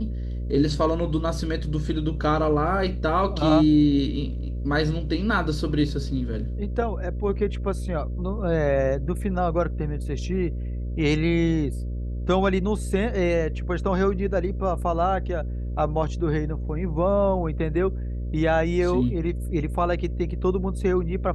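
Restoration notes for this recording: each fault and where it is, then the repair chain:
buzz 60 Hz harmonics 10 -29 dBFS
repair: de-hum 60 Hz, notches 10

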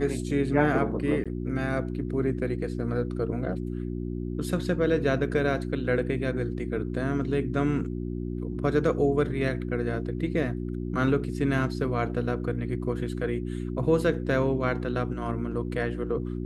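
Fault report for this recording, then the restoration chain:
hum 60 Hz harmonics 6 -32 dBFS
1.24–1.26 s: dropout 16 ms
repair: de-hum 60 Hz, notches 6; interpolate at 1.24 s, 16 ms

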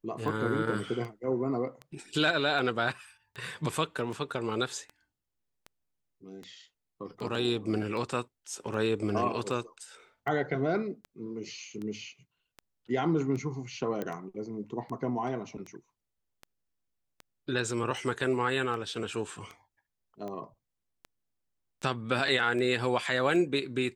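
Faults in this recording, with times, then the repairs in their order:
tick 78 rpm
14.02 s: pop -21 dBFS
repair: de-click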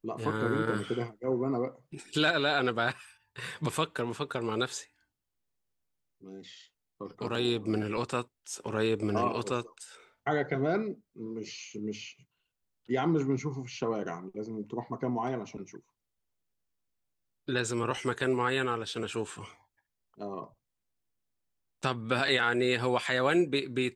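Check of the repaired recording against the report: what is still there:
nothing left

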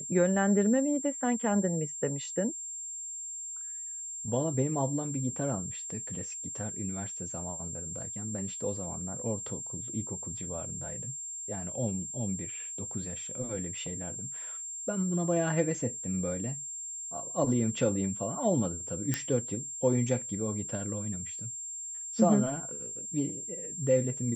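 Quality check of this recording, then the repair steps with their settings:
whine 7.4 kHz -37 dBFS
19.14 s: pop -13 dBFS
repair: de-click; band-stop 7.4 kHz, Q 30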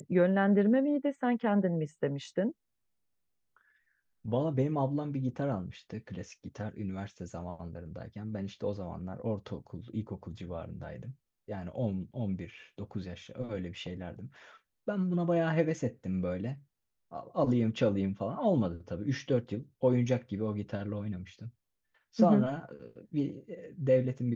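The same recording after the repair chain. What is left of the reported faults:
nothing left

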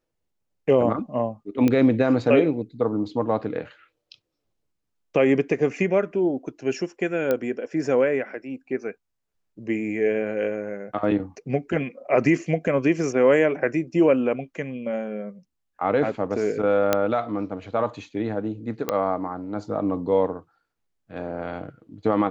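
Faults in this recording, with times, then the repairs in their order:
1.68 s: pop -10 dBFS
7.31 s: pop -11 dBFS
16.93 s: pop -5 dBFS
18.89 s: pop -10 dBFS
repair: de-click

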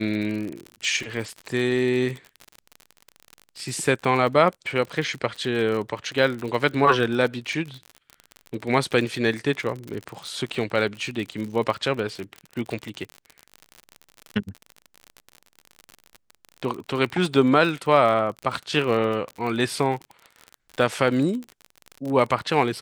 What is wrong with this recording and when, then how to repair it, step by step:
crackle 47 per s -29 dBFS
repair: de-click

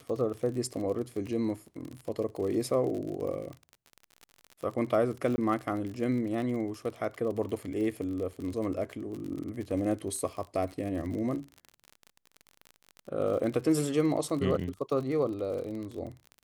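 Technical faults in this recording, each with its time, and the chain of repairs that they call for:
crackle 46 per s -36 dBFS
5.36–5.38 s: dropout 20 ms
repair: de-click; interpolate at 5.36 s, 20 ms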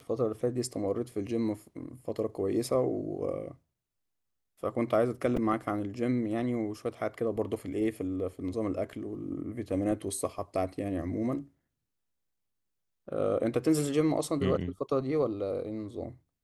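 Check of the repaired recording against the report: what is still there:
nothing left

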